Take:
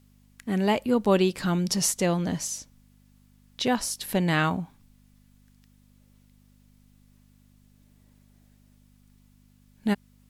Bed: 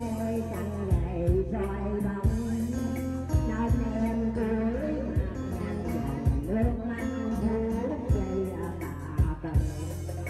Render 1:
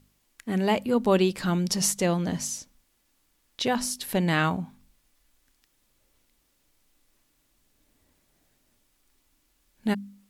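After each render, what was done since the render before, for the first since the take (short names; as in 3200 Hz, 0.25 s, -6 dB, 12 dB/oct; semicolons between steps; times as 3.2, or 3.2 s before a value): de-hum 50 Hz, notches 5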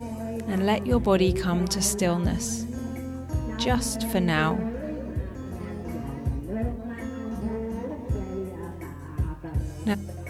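add bed -2.5 dB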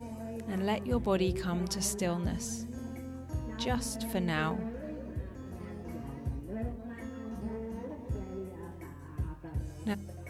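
gain -8 dB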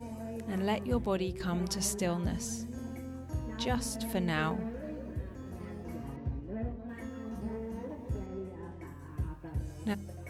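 0.93–1.4 fade out, to -8 dB; 6.16–6.89 air absorption 180 m; 8.26–8.87 air absorption 65 m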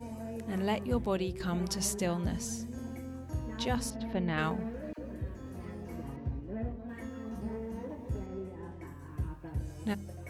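3.9–4.38 air absorption 260 m; 4.93–6.02 dispersion lows, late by 53 ms, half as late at 690 Hz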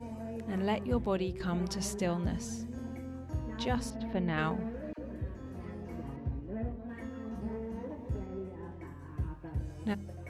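high shelf 6700 Hz -11 dB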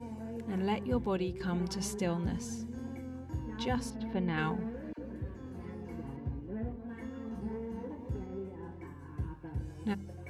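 notch comb 630 Hz; wow and flutter 27 cents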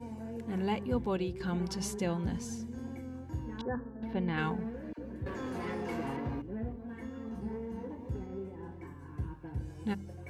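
3.61–4.03 rippled Chebyshev low-pass 1800 Hz, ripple 6 dB; 5.26–6.42 overdrive pedal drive 23 dB, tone 7000 Hz, clips at -25.5 dBFS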